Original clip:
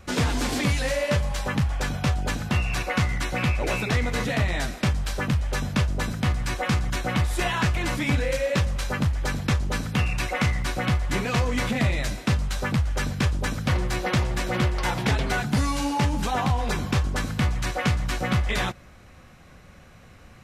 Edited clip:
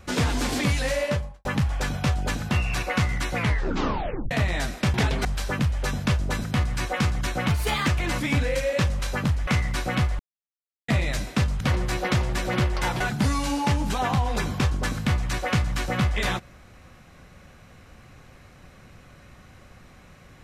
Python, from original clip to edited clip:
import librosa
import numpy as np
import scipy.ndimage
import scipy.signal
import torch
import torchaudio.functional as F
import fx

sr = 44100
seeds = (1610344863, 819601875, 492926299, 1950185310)

y = fx.studio_fade_out(x, sr, start_s=1.0, length_s=0.45)
y = fx.edit(y, sr, fx.tape_stop(start_s=3.34, length_s=0.97),
    fx.speed_span(start_s=7.19, length_s=0.46, speed=1.2),
    fx.cut(start_s=9.24, length_s=1.14),
    fx.silence(start_s=11.1, length_s=0.69),
    fx.cut(start_s=12.51, length_s=1.11),
    fx.move(start_s=15.02, length_s=0.31, to_s=4.94), tone=tone)